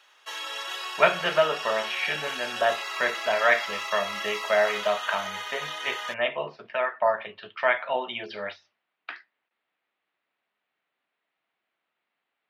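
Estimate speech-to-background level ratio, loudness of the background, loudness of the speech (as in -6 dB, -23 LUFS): 5.5 dB, -32.5 LUFS, -27.0 LUFS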